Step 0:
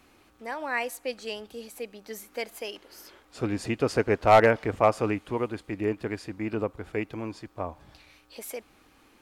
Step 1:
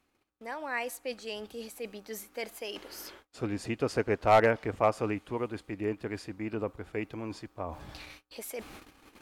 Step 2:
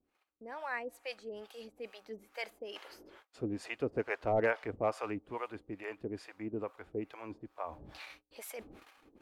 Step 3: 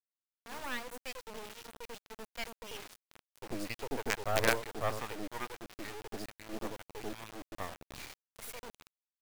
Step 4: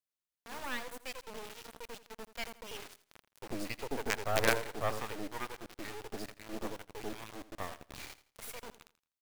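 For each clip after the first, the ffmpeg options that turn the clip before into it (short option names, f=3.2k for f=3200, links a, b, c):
-af "agate=range=-28dB:threshold=-55dB:ratio=16:detection=peak,areverse,acompressor=mode=upward:threshold=-29dB:ratio=2.5,areverse,volume=-4.5dB"
-filter_complex "[0:a]bass=f=250:g=-6,treble=f=4k:g=-6,acrossover=split=550[a][b];[a]aeval=exprs='val(0)*(1-1/2+1/2*cos(2*PI*2.3*n/s))':c=same[c];[b]aeval=exprs='val(0)*(1-1/2-1/2*cos(2*PI*2.3*n/s))':c=same[d];[c][d]amix=inputs=2:normalize=0,volume=1dB"
-filter_complex "[0:a]acrossover=split=480[a][b];[a]adelay=90[c];[c][b]amix=inputs=2:normalize=0,acrusher=bits=5:dc=4:mix=0:aa=0.000001,volume=4dB"
-af "aecho=1:1:83|166|249:0.168|0.047|0.0132"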